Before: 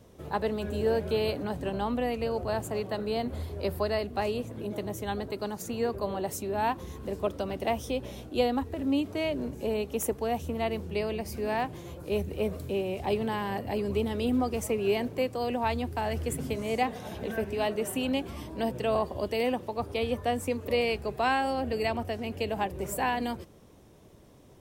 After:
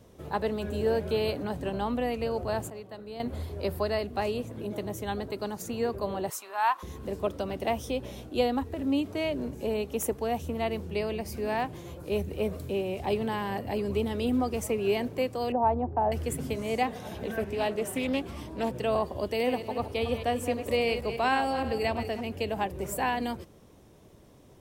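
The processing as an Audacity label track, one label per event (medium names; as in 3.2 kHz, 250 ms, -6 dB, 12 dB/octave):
2.700000	3.200000	gain -10.5 dB
6.300000	6.830000	resonant high-pass 1.1 kHz, resonance Q 2.8
15.520000	16.120000	resonant low-pass 810 Hz, resonance Q 2.1
17.380000	18.760000	loudspeaker Doppler distortion depth 0.22 ms
19.320000	22.210000	backward echo that repeats 154 ms, feedback 40%, level -9 dB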